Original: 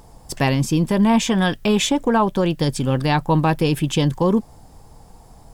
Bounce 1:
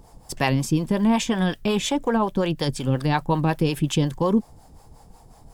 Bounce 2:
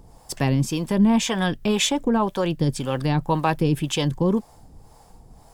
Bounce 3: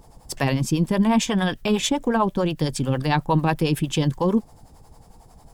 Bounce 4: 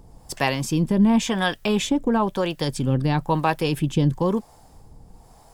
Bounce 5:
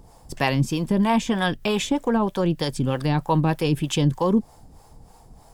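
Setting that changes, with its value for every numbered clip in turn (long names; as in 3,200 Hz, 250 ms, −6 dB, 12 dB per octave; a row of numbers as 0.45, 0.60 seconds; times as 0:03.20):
two-band tremolo in antiphase, speed: 5.5, 1.9, 11, 1, 3.2 Hertz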